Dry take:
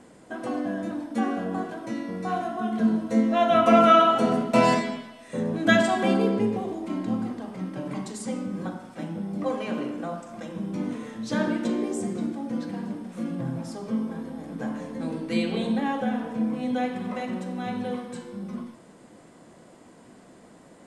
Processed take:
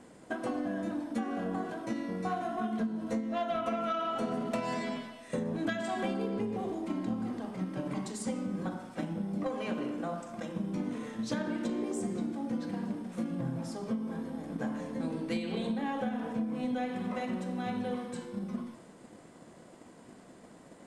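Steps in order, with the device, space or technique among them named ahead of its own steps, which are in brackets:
drum-bus smash (transient designer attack +7 dB, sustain +2 dB; downward compressor 16 to 1, threshold −24 dBFS, peak gain reduction 16 dB; soft clipping −20 dBFS, distortion −20 dB)
level −3.5 dB

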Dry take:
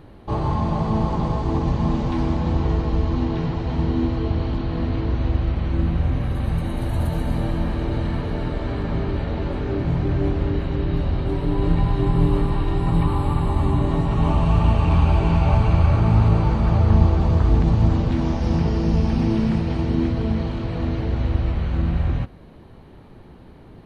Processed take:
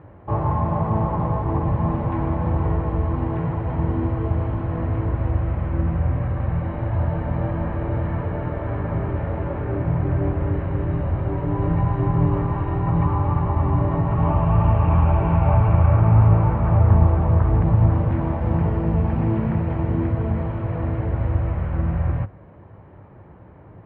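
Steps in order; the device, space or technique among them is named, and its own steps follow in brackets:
bass cabinet (loudspeaker in its box 64–2,100 Hz, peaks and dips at 100 Hz +7 dB, 240 Hz −7 dB, 400 Hz −3 dB, 580 Hz +4 dB, 1,000 Hz +3 dB)

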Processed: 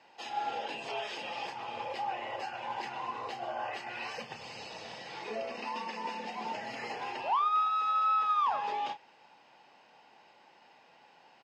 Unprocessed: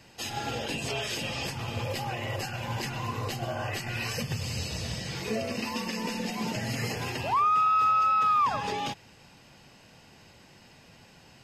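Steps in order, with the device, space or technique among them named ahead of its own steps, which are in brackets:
intercom (band-pass filter 390–3,700 Hz; parametric band 850 Hz +9.5 dB 0.48 octaves; soft clipping −17 dBFS, distortion −21 dB; double-tracking delay 31 ms −10.5 dB)
level −5.5 dB

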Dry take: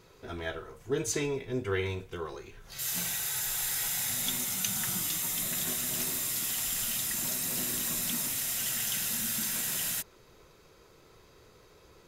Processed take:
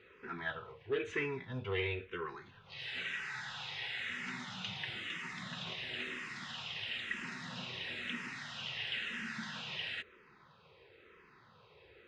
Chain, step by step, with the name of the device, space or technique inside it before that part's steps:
low-shelf EQ 390 Hz −3.5 dB
barber-pole phaser into a guitar amplifier (frequency shifter mixed with the dry sound −1 Hz; soft clipping −27.5 dBFS, distortion −19 dB; loudspeaker in its box 92–3,500 Hz, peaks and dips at 300 Hz −7 dB, 660 Hz −7 dB, 1,800 Hz +5 dB, 2,700 Hz +4 dB)
level +2 dB

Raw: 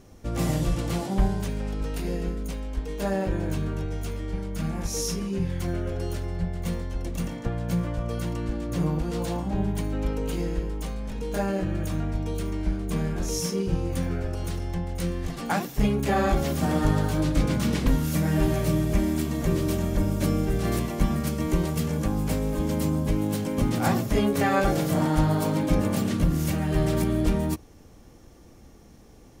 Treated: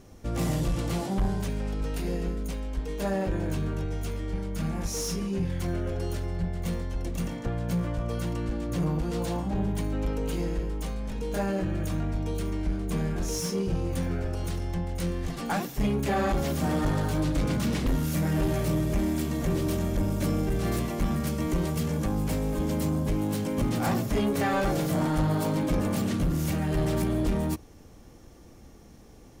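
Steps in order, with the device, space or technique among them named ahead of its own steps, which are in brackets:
saturation between pre-emphasis and de-emphasis (high-shelf EQ 2,600 Hz +9.5 dB; soft clipping −19.5 dBFS, distortion −14 dB; high-shelf EQ 2,600 Hz −9.5 dB)

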